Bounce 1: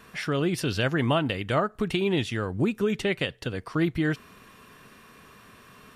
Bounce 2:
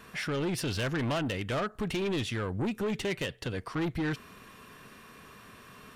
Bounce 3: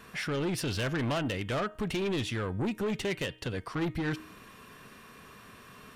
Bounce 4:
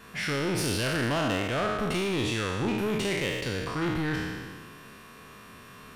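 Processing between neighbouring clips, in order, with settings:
soft clipping −27 dBFS, distortion −9 dB
hum removal 312.1 Hz, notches 11
peak hold with a decay on every bin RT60 1.70 s

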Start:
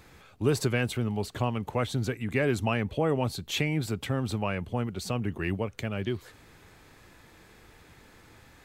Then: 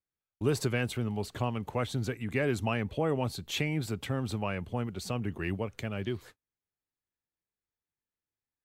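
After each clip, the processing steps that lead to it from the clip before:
noise gate −46 dBFS, range −42 dB
level −3 dB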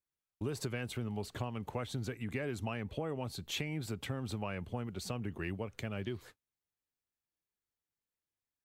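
downward compressor, threshold −31 dBFS, peak gain reduction 9 dB
level −2.5 dB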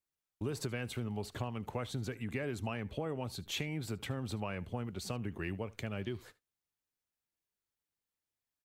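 single-tap delay 75 ms −22 dB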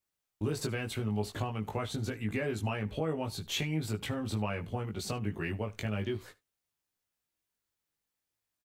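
double-tracking delay 19 ms −3 dB
level +2.5 dB

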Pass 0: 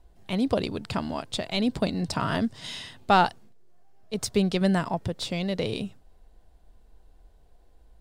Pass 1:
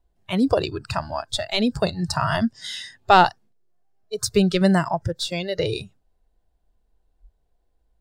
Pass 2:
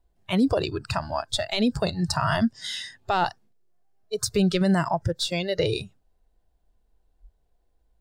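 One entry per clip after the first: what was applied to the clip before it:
noise reduction from a noise print of the clip's start 18 dB; level +6 dB
brickwall limiter −13 dBFS, peak gain reduction 11.5 dB

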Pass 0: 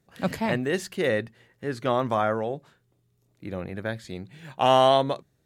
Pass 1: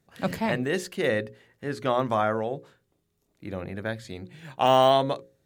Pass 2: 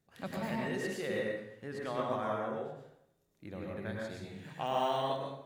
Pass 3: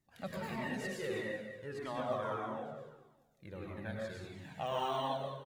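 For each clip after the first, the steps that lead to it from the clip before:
de-essing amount 65%; mains-hum notches 60/120/180/240/300/360/420/480/540 Hz
downward compressor 1.5 to 1, threshold −38 dBFS, peak gain reduction 8.5 dB; dense smooth reverb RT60 0.76 s, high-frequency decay 0.8×, pre-delay 90 ms, DRR −2.5 dB; level −8 dB
on a send: repeating echo 198 ms, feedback 34%, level −11 dB; on the sum: flanger whose copies keep moving one way falling 1.6 Hz; level +2 dB

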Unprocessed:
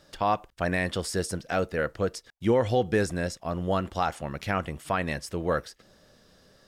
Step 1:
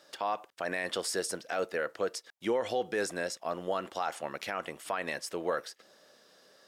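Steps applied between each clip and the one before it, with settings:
high-pass filter 390 Hz 12 dB per octave
brickwall limiter −21 dBFS, peak gain reduction 8 dB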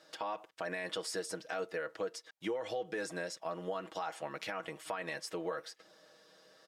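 high-shelf EQ 9,100 Hz −8 dB
comb filter 6.3 ms, depth 69%
downward compressor 2.5 to 1, threshold −34 dBFS, peak gain reduction 8.5 dB
level −2.5 dB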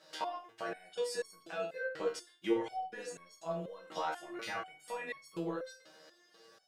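convolution reverb RT60 0.35 s, pre-delay 5 ms, DRR 2 dB
step-sequenced resonator 4.1 Hz 78–1,100 Hz
level +9.5 dB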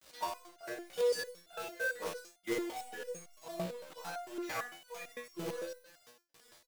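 log-companded quantiser 4 bits
ambience of single reflections 54 ms −9.5 dB, 74 ms −9 dB
step-sequenced resonator 8.9 Hz 60–700 Hz
level +8 dB

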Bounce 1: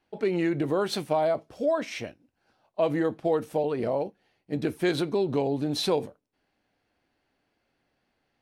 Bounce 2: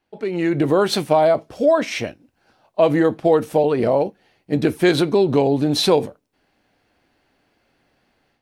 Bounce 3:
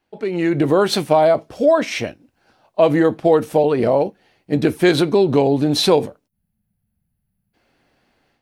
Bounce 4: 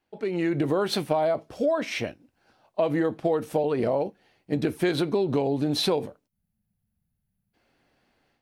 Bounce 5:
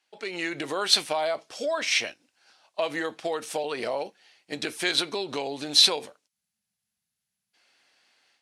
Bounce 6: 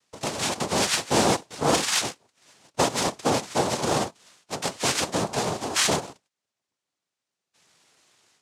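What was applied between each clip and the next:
automatic gain control gain up to 10.5 dB
gain on a spectral selection 0:06.28–0:07.54, 220–9,900 Hz −28 dB; level +1.5 dB
dynamic equaliser 7,000 Hz, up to −4 dB, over −39 dBFS, Q 1.3; downward compressor 3 to 1, threshold −16 dBFS, peak gain reduction 6 dB; level −5.5 dB
meter weighting curve ITU-R 468
mid-hump overdrive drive 16 dB, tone 1,200 Hz, clips at −5 dBFS; cochlear-implant simulation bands 2

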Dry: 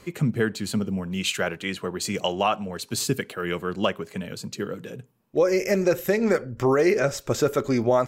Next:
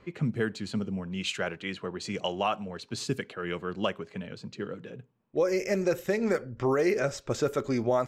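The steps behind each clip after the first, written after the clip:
low-pass that shuts in the quiet parts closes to 2,700 Hz, open at −16.5 dBFS
level −5.5 dB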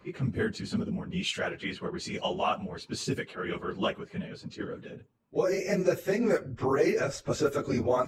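random phases in long frames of 50 ms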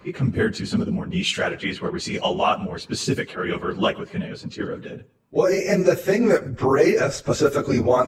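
repeating echo 116 ms, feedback 31%, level −24 dB
level +8.5 dB

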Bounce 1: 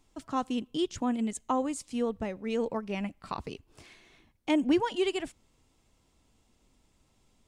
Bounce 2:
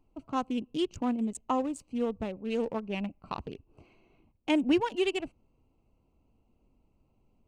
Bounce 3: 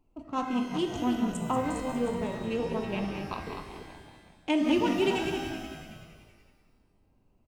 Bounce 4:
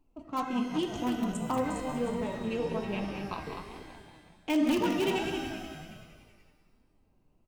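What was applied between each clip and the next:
adaptive Wiener filter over 25 samples; parametric band 2,700 Hz +7 dB 0.34 octaves
delay that plays each chunk backwards 192 ms, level −7 dB; echo with shifted repeats 188 ms, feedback 60%, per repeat −56 Hz, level −10 dB; reverb with rising layers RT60 1.2 s, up +12 semitones, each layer −8 dB, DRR 5 dB; level −1 dB
in parallel at −12 dB: wrap-around overflow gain 18.5 dB; on the sum: flanger 1.3 Hz, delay 3.1 ms, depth 3.8 ms, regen +62%; level +1 dB

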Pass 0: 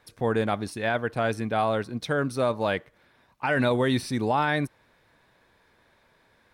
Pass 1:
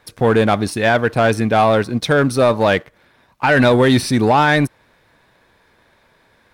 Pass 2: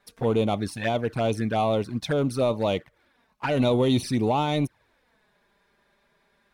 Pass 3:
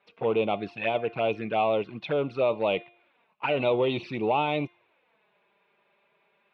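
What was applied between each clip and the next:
leveller curve on the samples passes 1; level +9 dB
flanger swept by the level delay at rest 5.1 ms, full sweep at −11 dBFS; level −8 dB
loudspeaker in its box 220–3,100 Hz, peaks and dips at 250 Hz −10 dB, 1,700 Hz −9 dB, 2,600 Hz +9 dB; hum removal 350.3 Hz, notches 33

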